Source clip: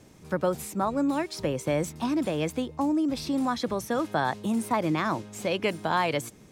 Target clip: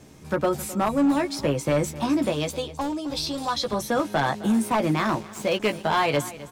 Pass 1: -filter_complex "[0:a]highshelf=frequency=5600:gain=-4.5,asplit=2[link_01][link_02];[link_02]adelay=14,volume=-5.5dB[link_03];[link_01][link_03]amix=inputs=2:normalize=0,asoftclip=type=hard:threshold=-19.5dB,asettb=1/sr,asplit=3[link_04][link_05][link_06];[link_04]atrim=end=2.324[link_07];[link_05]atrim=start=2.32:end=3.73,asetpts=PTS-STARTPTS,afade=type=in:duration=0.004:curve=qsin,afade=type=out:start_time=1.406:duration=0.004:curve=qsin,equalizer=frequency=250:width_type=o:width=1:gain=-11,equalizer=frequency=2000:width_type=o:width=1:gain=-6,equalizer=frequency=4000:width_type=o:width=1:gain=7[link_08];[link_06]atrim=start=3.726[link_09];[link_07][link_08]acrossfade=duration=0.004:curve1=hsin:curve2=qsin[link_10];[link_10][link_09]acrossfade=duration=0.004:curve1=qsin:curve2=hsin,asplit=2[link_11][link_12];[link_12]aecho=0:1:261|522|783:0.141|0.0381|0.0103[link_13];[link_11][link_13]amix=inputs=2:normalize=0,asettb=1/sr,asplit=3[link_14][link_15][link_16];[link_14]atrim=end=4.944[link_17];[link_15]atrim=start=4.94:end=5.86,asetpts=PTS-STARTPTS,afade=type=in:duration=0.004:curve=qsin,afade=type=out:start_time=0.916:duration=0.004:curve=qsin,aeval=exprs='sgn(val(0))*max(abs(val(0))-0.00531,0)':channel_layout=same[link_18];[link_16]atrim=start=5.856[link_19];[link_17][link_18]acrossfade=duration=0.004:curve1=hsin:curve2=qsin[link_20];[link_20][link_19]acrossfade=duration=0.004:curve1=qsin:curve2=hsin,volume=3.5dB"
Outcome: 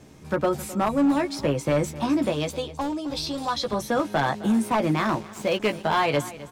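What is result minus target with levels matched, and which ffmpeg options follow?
8,000 Hz band −2.5 dB
-filter_complex "[0:a]asplit=2[link_01][link_02];[link_02]adelay=14,volume=-5.5dB[link_03];[link_01][link_03]amix=inputs=2:normalize=0,asoftclip=type=hard:threshold=-19.5dB,asettb=1/sr,asplit=3[link_04][link_05][link_06];[link_04]atrim=end=2.324[link_07];[link_05]atrim=start=2.32:end=3.73,asetpts=PTS-STARTPTS,afade=type=in:duration=0.004:curve=qsin,afade=type=out:start_time=1.406:duration=0.004:curve=qsin,equalizer=frequency=250:width_type=o:width=1:gain=-11,equalizer=frequency=2000:width_type=o:width=1:gain=-6,equalizer=frequency=4000:width_type=o:width=1:gain=7[link_08];[link_06]atrim=start=3.726[link_09];[link_07][link_08]acrossfade=duration=0.004:curve1=hsin:curve2=qsin[link_10];[link_10][link_09]acrossfade=duration=0.004:curve1=qsin:curve2=hsin,asplit=2[link_11][link_12];[link_12]aecho=0:1:261|522|783:0.141|0.0381|0.0103[link_13];[link_11][link_13]amix=inputs=2:normalize=0,asettb=1/sr,asplit=3[link_14][link_15][link_16];[link_14]atrim=end=4.944[link_17];[link_15]atrim=start=4.94:end=5.86,asetpts=PTS-STARTPTS,afade=type=in:duration=0.004:curve=qsin,afade=type=out:start_time=0.916:duration=0.004:curve=qsin,aeval=exprs='sgn(val(0))*max(abs(val(0))-0.00531,0)':channel_layout=same[link_18];[link_16]atrim=start=5.856[link_19];[link_17][link_18]acrossfade=duration=0.004:curve1=hsin:curve2=qsin[link_20];[link_20][link_19]acrossfade=duration=0.004:curve1=qsin:curve2=hsin,volume=3.5dB"

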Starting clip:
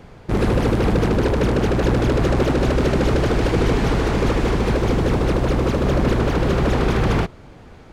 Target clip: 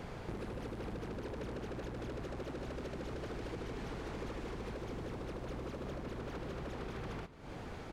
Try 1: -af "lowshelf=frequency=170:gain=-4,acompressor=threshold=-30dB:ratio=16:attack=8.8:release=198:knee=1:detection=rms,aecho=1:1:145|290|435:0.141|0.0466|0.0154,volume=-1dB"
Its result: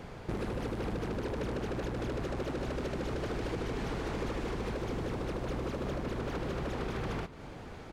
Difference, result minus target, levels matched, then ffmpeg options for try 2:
downward compressor: peak gain reduction −7 dB
-af "lowshelf=frequency=170:gain=-4,acompressor=threshold=-37.5dB:ratio=16:attack=8.8:release=198:knee=1:detection=rms,aecho=1:1:145|290|435:0.141|0.0466|0.0154,volume=-1dB"

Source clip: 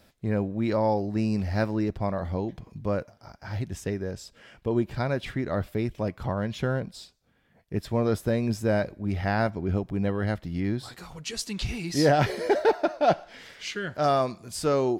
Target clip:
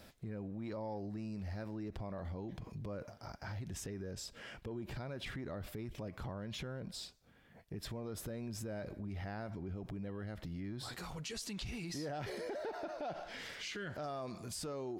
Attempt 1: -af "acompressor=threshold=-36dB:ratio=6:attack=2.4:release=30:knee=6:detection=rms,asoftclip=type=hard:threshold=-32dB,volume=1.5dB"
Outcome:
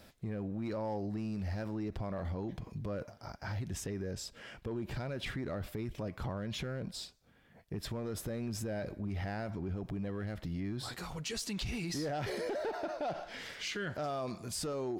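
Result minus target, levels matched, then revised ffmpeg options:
downward compressor: peak gain reduction −5.5 dB
-af "acompressor=threshold=-42.5dB:ratio=6:attack=2.4:release=30:knee=6:detection=rms,asoftclip=type=hard:threshold=-32dB,volume=1.5dB"

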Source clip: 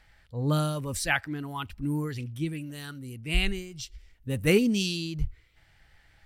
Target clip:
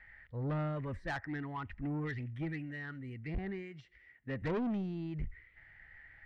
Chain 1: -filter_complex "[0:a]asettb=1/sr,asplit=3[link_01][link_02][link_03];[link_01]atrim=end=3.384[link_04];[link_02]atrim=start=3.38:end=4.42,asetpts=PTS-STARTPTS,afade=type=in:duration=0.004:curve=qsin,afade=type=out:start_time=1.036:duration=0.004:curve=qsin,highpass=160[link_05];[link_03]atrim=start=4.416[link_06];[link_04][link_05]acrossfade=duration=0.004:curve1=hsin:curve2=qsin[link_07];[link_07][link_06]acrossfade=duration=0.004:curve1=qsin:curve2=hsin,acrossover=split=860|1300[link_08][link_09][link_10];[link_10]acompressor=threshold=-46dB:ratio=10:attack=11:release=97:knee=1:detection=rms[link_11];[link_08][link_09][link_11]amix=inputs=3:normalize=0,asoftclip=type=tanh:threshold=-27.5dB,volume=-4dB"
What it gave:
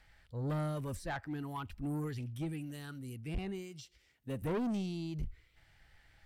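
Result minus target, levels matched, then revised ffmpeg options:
2,000 Hz band −5.0 dB
-filter_complex "[0:a]asettb=1/sr,asplit=3[link_01][link_02][link_03];[link_01]atrim=end=3.384[link_04];[link_02]atrim=start=3.38:end=4.42,asetpts=PTS-STARTPTS,afade=type=in:duration=0.004:curve=qsin,afade=type=out:start_time=1.036:duration=0.004:curve=qsin,highpass=160[link_05];[link_03]atrim=start=4.416[link_06];[link_04][link_05]acrossfade=duration=0.004:curve1=hsin:curve2=qsin[link_07];[link_07][link_06]acrossfade=duration=0.004:curve1=qsin:curve2=hsin,acrossover=split=860|1300[link_08][link_09][link_10];[link_10]acompressor=threshold=-46dB:ratio=10:attack=11:release=97:knee=1:detection=rms,lowpass=frequency=1900:width_type=q:width=8[link_11];[link_08][link_09][link_11]amix=inputs=3:normalize=0,asoftclip=type=tanh:threshold=-27.5dB,volume=-4dB"

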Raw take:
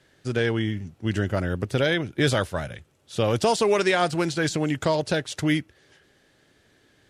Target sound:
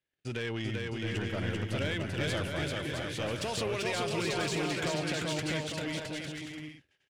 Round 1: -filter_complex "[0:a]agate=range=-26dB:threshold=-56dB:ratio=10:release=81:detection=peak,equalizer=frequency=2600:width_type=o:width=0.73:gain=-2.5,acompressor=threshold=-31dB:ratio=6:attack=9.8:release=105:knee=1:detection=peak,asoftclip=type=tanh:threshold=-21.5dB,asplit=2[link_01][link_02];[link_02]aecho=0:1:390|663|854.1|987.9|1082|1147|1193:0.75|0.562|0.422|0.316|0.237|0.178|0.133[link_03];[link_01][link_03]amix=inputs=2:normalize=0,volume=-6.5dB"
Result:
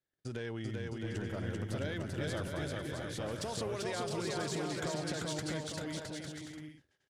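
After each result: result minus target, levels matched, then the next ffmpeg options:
downward compressor: peak gain reduction +4.5 dB; 2,000 Hz band −3.0 dB
-filter_complex "[0:a]agate=range=-26dB:threshold=-56dB:ratio=10:release=81:detection=peak,equalizer=frequency=2600:width_type=o:width=0.73:gain=-2.5,acompressor=threshold=-23.5dB:ratio=6:attack=9.8:release=105:knee=1:detection=peak,asoftclip=type=tanh:threshold=-21.5dB,asplit=2[link_01][link_02];[link_02]aecho=0:1:390|663|854.1|987.9|1082|1147|1193:0.75|0.562|0.422|0.316|0.237|0.178|0.133[link_03];[link_01][link_03]amix=inputs=2:normalize=0,volume=-6.5dB"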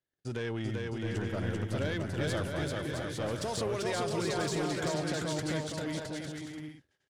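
2,000 Hz band −3.0 dB
-filter_complex "[0:a]agate=range=-26dB:threshold=-56dB:ratio=10:release=81:detection=peak,equalizer=frequency=2600:width_type=o:width=0.73:gain=9.5,acompressor=threshold=-23.5dB:ratio=6:attack=9.8:release=105:knee=1:detection=peak,asoftclip=type=tanh:threshold=-21.5dB,asplit=2[link_01][link_02];[link_02]aecho=0:1:390|663|854.1|987.9|1082|1147|1193:0.75|0.562|0.422|0.316|0.237|0.178|0.133[link_03];[link_01][link_03]amix=inputs=2:normalize=0,volume=-6.5dB"

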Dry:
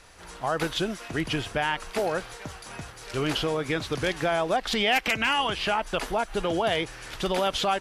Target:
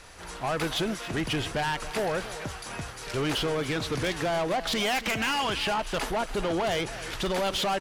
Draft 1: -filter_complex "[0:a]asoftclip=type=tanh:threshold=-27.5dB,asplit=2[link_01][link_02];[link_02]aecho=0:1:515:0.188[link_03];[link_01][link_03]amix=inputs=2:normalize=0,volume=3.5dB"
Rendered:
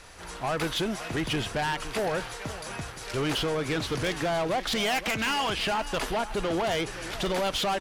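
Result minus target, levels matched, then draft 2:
echo 239 ms late
-filter_complex "[0:a]asoftclip=type=tanh:threshold=-27.5dB,asplit=2[link_01][link_02];[link_02]aecho=0:1:276:0.188[link_03];[link_01][link_03]amix=inputs=2:normalize=0,volume=3.5dB"

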